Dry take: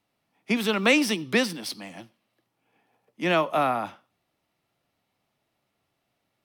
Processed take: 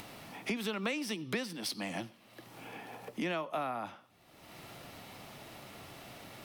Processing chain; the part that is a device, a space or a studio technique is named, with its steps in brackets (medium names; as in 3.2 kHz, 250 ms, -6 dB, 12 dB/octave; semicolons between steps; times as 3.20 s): upward and downward compression (upward compressor, threshold -28 dBFS; compression 6:1, threshold -33 dBFS, peak gain reduction 17 dB)